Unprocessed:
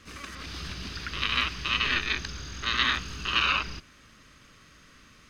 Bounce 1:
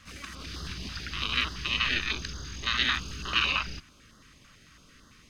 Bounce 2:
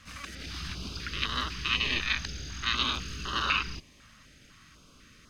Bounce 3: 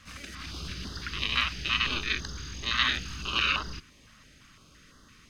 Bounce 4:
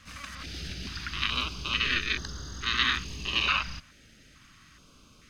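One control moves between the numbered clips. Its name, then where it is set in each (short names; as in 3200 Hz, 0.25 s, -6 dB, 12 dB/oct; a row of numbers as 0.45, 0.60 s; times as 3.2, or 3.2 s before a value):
stepped notch, rate: 9, 4, 5.9, 2.3 Hz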